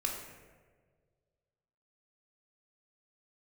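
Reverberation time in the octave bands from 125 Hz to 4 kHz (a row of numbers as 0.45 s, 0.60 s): 2.2 s, 1.7 s, 1.9 s, 1.3 s, 1.2 s, 0.80 s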